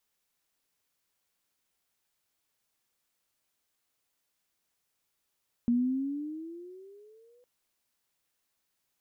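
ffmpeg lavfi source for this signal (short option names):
-f lavfi -i "aevalsrc='pow(10,(-21.5-38*t/1.76)/20)*sin(2*PI*235*1.76/(13*log(2)/12)*(exp(13*log(2)/12*t/1.76)-1))':d=1.76:s=44100"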